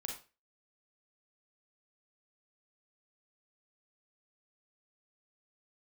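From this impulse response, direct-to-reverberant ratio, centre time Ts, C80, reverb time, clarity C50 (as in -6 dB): 0.5 dB, 28 ms, 11.0 dB, 0.30 s, 5.0 dB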